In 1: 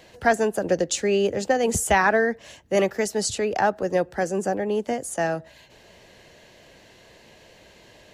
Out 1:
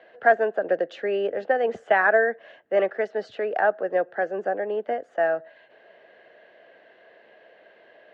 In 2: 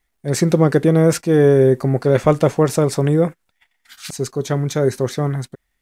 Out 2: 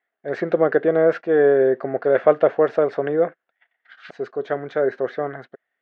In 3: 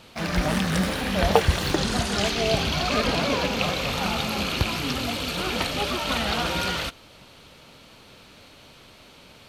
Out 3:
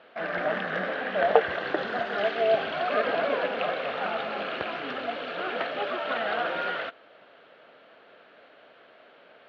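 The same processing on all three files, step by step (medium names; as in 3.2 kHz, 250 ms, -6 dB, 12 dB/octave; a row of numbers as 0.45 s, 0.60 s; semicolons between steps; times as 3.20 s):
cabinet simulation 410–2700 Hz, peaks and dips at 460 Hz +3 dB, 660 Hz +7 dB, 940 Hz -6 dB, 1.6 kHz +6 dB, 2.4 kHz -6 dB; trim -2 dB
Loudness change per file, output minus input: -1.0 LU, -3.0 LU, -4.0 LU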